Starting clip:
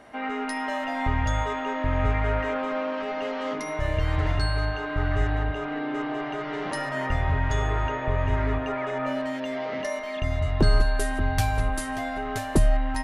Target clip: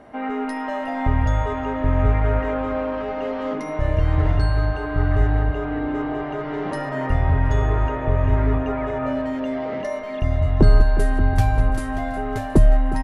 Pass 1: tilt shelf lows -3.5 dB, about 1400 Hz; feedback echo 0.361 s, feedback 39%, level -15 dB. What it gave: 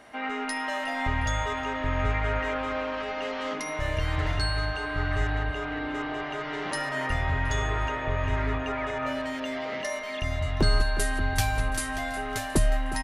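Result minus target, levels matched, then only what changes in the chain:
1000 Hz band +3.0 dB
change: tilt shelf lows +6.5 dB, about 1400 Hz

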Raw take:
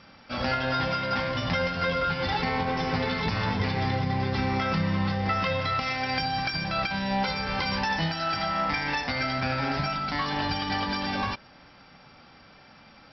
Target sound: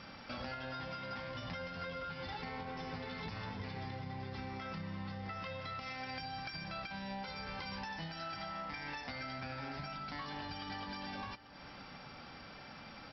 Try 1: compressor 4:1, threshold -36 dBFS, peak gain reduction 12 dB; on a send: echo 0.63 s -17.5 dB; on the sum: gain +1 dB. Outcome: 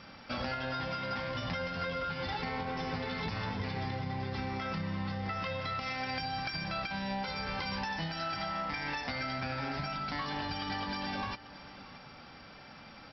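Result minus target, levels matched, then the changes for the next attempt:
compressor: peak gain reduction -7 dB
change: compressor 4:1, threshold -45.5 dBFS, peak gain reduction 19 dB

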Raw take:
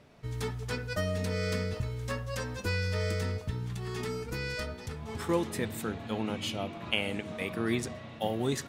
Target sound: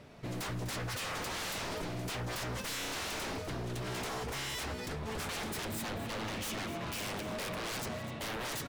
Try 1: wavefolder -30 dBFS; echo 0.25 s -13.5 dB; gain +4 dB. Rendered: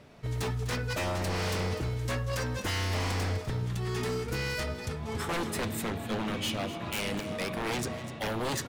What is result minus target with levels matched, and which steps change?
wavefolder: distortion -13 dB
change: wavefolder -37.5 dBFS

